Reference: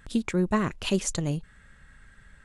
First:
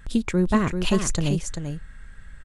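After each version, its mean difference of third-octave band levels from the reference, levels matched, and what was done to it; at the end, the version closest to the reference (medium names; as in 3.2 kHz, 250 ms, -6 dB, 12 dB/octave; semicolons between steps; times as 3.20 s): 4.0 dB: bass shelf 69 Hz +11.5 dB; delay 390 ms -7 dB; trim +2.5 dB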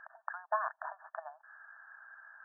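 16.0 dB: compression 6:1, threshold -29 dBFS, peak gain reduction 9.5 dB; brick-wall FIR band-pass 620–1800 Hz; trim +6.5 dB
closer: first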